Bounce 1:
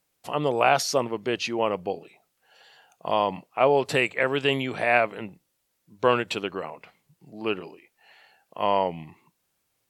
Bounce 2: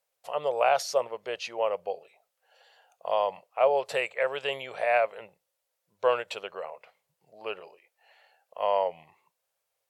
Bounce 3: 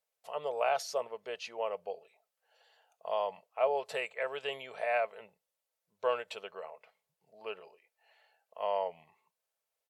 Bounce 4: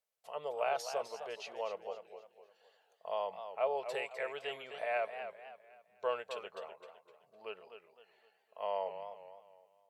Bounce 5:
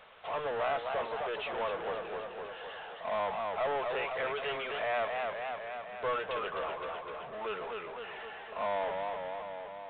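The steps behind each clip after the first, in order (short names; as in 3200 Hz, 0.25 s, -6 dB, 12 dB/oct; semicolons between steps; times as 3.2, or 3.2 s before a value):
resonant low shelf 390 Hz -11 dB, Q 3; gain -7 dB
comb 4.6 ms, depth 33%; gain -7 dB
warbling echo 0.256 s, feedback 38%, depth 120 cents, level -9.5 dB; gain -4 dB
power-law curve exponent 0.35; bell 1200 Hz +7 dB 1 oct; downsampling 8000 Hz; gain -7.5 dB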